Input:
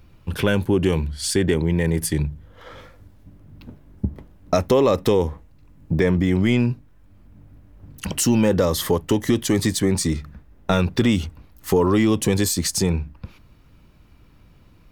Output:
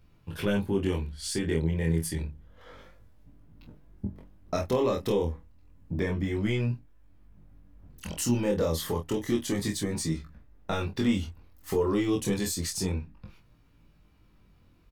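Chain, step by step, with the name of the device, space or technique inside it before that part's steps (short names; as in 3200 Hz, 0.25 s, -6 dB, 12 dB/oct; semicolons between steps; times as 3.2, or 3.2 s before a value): double-tracked vocal (doubler 25 ms -6 dB; chorus 0.29 Hz, delay 18 ms, depth 6.7 ms); gain -7 dB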